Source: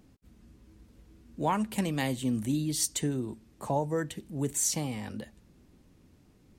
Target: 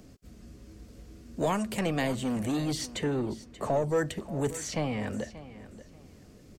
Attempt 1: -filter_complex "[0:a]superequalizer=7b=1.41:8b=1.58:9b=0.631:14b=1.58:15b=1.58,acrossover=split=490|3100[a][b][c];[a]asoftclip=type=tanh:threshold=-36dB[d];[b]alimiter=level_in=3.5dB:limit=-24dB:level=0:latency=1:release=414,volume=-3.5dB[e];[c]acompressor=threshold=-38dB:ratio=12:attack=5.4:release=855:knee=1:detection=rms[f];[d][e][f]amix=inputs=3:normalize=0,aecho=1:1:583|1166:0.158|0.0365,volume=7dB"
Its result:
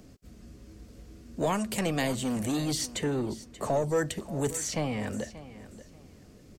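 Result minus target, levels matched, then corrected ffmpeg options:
compressor: peak gain reduction -6.5 dB
-filter_complex "[0:a]superequalizer=7b=1.41:8b=1.58:9b=0.631:14b=1.58:15b=1.58,acrossover=split=490|3100[a][b][c];[a]asoftclip=type=tanh:threshold=-36dB[d];[b]alimiter=level_in=3.5dB:limit=-24dB:level=0:latency=1:release=414,volume=-3.5dB[e];[c]acompressor=threshold=-45dB:ratio=12:attack=5.4:release=855:knee=1:detection=rms[f];[d][e][f]amix=inputs=3:normalize=0,aecho=1:1:583|1166:0.158|0.0365,volume=7dB"

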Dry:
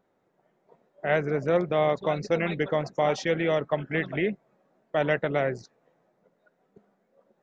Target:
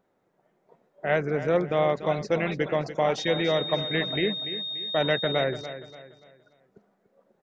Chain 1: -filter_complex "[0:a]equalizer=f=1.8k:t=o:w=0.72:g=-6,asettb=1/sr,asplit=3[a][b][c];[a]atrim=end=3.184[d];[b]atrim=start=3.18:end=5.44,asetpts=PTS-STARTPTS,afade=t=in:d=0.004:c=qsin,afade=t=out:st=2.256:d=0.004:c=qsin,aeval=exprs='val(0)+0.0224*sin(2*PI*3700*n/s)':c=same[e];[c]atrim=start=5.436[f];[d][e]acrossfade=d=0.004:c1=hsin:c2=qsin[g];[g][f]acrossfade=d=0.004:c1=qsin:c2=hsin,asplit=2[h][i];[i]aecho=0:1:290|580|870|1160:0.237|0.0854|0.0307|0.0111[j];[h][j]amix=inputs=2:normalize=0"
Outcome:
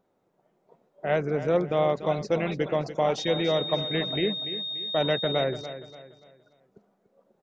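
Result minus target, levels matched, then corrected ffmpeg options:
2000 Hz band -4.0 dB
-filter_complex "[0:a]asettb=1/sr,asplit=3[a][b][c];[a]atrim=end=3.184[d];[b]atrim=start=3.18:end=5.44,asetpts=PTS-STARTPTS,afade=t=in:d=0.004:c=qsin,afade=t=out:st=2.256:d=0.004:c=qsin,aeval=exprs='val(0)+0.0224*sin(2*PI*3700*n/s)':c=same[e];[c]atrim=start=5.436[f];[d][e]acrossfade=d=0.004:c1=hsin:c2=qsin[g];[g][f]acrossfade=d=0.004:c1=qsin:c2=hsin,asplit=2[h][i];[i]aecho=0:1:290|580|870|1160:0.237|0.0854|0.0307|0.0111[j];[h][j]amix=inputs=2:normalize=0"

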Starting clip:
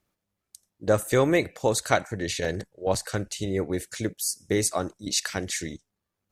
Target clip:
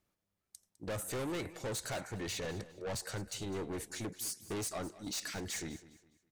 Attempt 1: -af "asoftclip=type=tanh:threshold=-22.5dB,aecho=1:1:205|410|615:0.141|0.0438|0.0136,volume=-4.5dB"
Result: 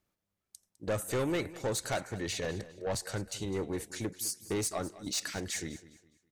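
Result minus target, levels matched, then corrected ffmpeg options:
soft clip: distortion -5 dB
-af "asoftclip=type=tanh:threshold=-31dB,aecho=1:1:205|410|615:0.141|0.0438|0.0136,volume=-4.5dB"

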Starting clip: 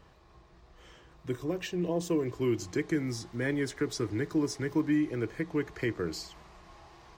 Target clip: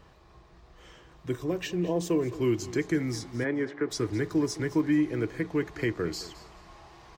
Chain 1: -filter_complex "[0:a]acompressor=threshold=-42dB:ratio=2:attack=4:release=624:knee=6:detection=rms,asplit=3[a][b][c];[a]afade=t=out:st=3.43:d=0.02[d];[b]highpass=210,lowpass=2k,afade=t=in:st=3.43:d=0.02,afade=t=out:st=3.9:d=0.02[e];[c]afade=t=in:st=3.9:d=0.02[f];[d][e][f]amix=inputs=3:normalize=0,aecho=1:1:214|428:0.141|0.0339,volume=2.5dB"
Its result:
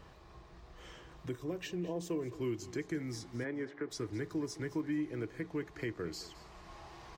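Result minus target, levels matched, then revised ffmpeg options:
compressor: peak gain reduction +11 dB
-filter_complex "[0:a]asplit=3[a][b][c];[a]afade=t=out:st=3.43:d=0.02[d];[b]highpass=210,lowpass=2k,afade=t=in:st=3.43:d=0.02,afade=t=out:st=3.9:d=0.02[e];[c]afade=t=in:st=3.9:d=0.02[f];[d][e][f]amix=inputs=3:normalize=0,aecho=1:1:214|428:0.141|0.0339,volume=2.5dB"

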